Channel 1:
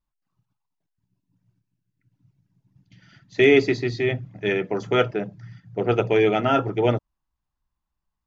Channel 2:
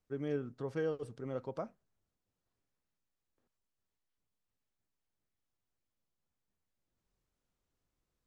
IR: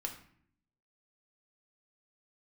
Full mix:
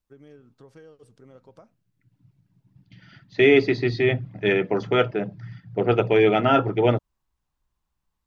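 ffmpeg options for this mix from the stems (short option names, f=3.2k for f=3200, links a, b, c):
-filter_complex "[0:a]dynaudnorm=f=110:g=3:m=6dB,lowpass=f=4.9k:w=0.5412,lowpass=f=4.9k:w=1.3066,volume=-3dB[a];[1:a]highshelf=f=3.4k:g=8.5,acompressor=threshold=-40dB:ratio=4,volume=-6dB[b];[a][b]amix=inputs=2:normalize=0"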